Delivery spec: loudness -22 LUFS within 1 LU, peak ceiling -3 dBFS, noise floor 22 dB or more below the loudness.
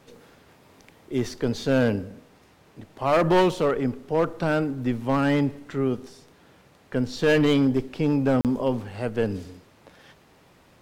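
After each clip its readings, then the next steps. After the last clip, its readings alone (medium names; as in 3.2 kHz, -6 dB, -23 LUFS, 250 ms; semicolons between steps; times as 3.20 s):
clipped samples 1.3%; clipping level -14.5 dBFS; dropouts 1; longest dropout 38 ms; loudness -24.0 LUFS; peak level -14.5 dBFS; loudness target -22.0 LUFS
-> clip repair -14.5 dBFS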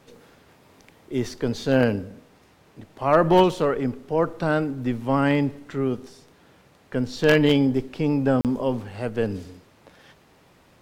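clipped samples 0.0%; dropouts 1; longest dropout 38 ms
-> interpolate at 8.41 s, 38 ms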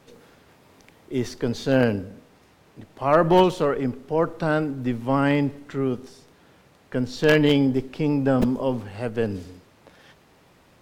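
dropouts 0; loudness -23.0 LUFS; peak level -5.5 dBFS; loudness target -22.0 LUFS
-> trim +1 dB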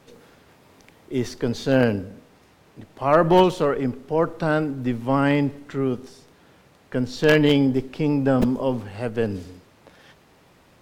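loudness -22.0 LUFS; peak level -4.5 dBFS; noise floor -56 dBFS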